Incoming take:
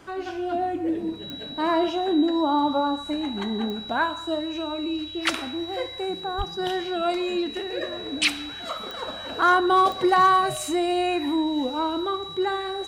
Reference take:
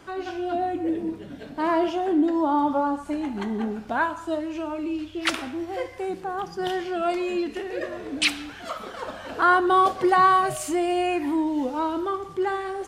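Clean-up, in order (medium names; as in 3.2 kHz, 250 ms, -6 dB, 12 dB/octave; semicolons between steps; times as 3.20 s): clip repair -11.5 dBFS; de-click; band-stop 3.9 kHz, Q 30; 6.37–6.49 s: high-pass 140 Hz 24 dB/octave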